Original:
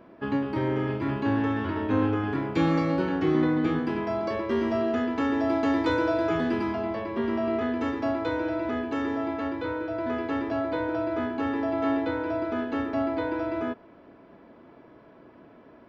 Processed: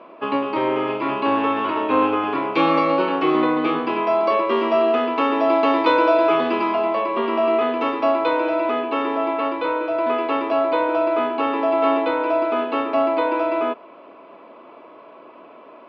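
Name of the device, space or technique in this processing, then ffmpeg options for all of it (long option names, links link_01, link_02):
phone earpiece: -filter_complex "[0:a]highpass=390,equalizer=frequency=590:width_type=q:width=4:gain=4,equalizer=frequency=1100:width_type=q:width=4:gain=9,equalizer=frequency=1700:width_type=q:width=4:gain=-8,equalizer=frequency=2600:width_type=q:width=4:gain=8,lowpass=frequency=4400:width=0.5412,lowpass=frequency=4400:width=1.3066,asettb=1/sr,asplit=3[link_01][link_02][link_03];[link_01]atrim=end=8.814[link_04];[link_02]atrim=start=8.81:end=9.45,asetpts=PTS-STARTPTS,afade=type=in:duration=0.004:curve=qsin,afade=type=out:start_time=0.636:duration=0.004:curve=qsin,lowpass=5100[link_05];[link_03]atrim=start=9.446[link_06];[link_04][link_05]acrossfade=duration=0.004:curve1=hsin:curve2=qsin[link_07];[link_07][link_06]acrossfade=duration=0.004:curve1=qsin:curve2=hsin,volume=8.5dB"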